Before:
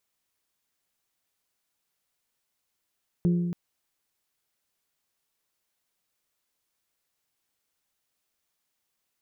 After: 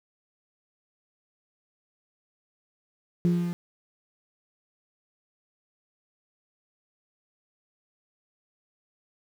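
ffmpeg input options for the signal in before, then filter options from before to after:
-f lavfi -i "aevalsrc='0.119*pow(10,-3*t/1.68)*sin(2*PI*174*t)+0.0398*pow(10,-3*t/1.034)*sin(2*PI*348*t)+0.0133*pow(10,-3*t/0.91)*sin(2*PI*417.6*t)+0.00447*pow(10,-3*t/0.779)*sin(2*PI*522*t)':duration=0.28:sample_rate=44100"
-af "aeval=exprs='val(0)*gte(abs(val(0)),0.015)':channel_layout=same"

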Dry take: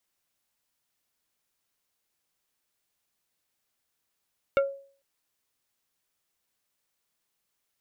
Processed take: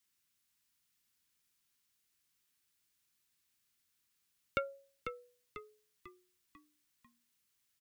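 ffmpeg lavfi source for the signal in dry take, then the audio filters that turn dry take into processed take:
-f lavfi -i "aevalsrc='0.141*pow(10,-3*t/0.46)*sin(2*PI*552*t)+0.075*pow(10,-3*t/0.153)*sin(2*PI*1380*t)+0.0398*pow(10,-3*t/0.087)*sin(2*PI*2208*t)+0.0211*pow(10,-3*t/0.067)*sin(2*PI*2760*t)+0.0112*pow(10,-3*t/0.049)*sin(2*PI*3588*t)':duration=0.45:sample_rate=44100"
-filter_complex "[0:a]highpass=42,equalizer=frequency=640:width_type=o:width=1.2:gain=-15,asplit=2[link_01][link_02];[link_02]asplit=5[link_03][link_04][link_05][link_06][link_07];[link_03]adelay=495,afreqshift=-63,volume=-7.5dB[link_08];[link_04]adelay=990,afreqshift=-126,volume=-14.1dB[link_09];[link_05]adelay=1485,afreqshift=-189,volume=-20.6dB[link_10];[link_06]adelay=1980,afreqshift=-252,volume=-27.2dB[link_11];[link_07]adelay=2475,afreqshift=-315,volume=-33.7dB[link_12];[link_08][link_09][link_10][link_11][link_12]amix=inputs=5:normalize=0[link_13];[link_01][link_13]amix=inputs=2:normalize=0"

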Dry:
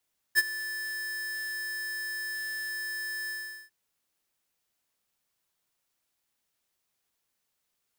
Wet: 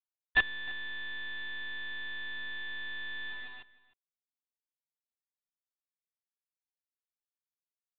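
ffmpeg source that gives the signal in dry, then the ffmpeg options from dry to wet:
-f lavfi -i "aevalsrc='0.112*(2*lt(mod(1750*t,1),0.5)-1)':duration=3.348:sample_rate=44100,afade=type=in:duration=0.036,afade=type=out:start_time=0.036:duration=0.031:silence=0.158,afade=type=out:start_time=2.94:duration=0.408"
-filter_complex "[0:a]aresample=8000,acrusher=bits=5:dc=4:mix=0:aa=0.000001,aresample=44100,asplit=2[link_01][link_02];[link_02]adelay=309,volume=-19dB,highshelf=frequency=4000:gain=-6.95[link_03];[link_01][link_03]amix=inputs=2:normalize=0"

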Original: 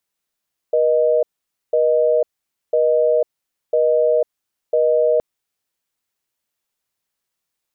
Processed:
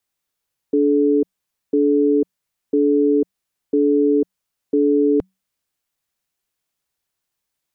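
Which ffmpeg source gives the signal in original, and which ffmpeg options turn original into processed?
-f lavfi -i "aevalsrc='0.168*(sin(2*PI*480*t)+sin(2*PI*620*t))*clip(min(mod(t,1),0.5-mod(t,1))/0.005,0,1)':duration=4.47:sample_rate=44100"
-af "afreqshift=-190"

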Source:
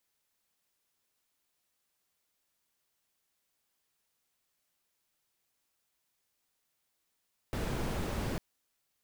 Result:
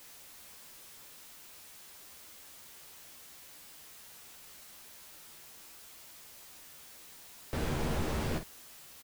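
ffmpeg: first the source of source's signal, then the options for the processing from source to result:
-f lavfi -i "anoisesrc=color=brown:amplitude=0.0933:duration=0.85:sample_rate=44100:seed=1"
-af "aeval=exprs='val(0)+0.5*0.00398*sgn(val(0))':channel_layout=same,aecho=1:1:13|51:0.531|0.335"

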